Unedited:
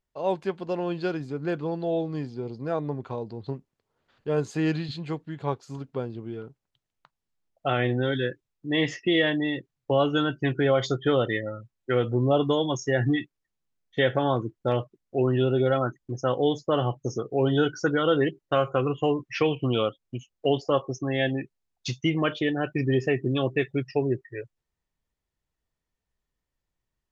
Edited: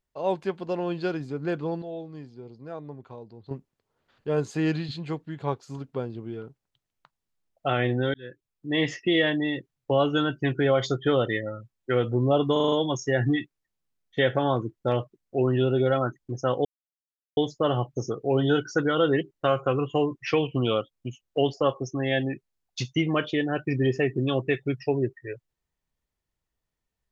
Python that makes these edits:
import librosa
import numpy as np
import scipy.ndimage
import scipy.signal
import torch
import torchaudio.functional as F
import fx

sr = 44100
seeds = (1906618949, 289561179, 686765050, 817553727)

y = fx.edit(x, sr, fx.clip_gain(start_s=1.82, length_s=1.69, db=-9.5),
    fx.fade_in_span(start_s=8.14, length_s=0.79, curve='qsin'),
    fx.stutter(start_s=12.52, slice_s=0.04, count=6),
    fx.insert_silence(at_s=16.45, length_s=0.72), tone=tone)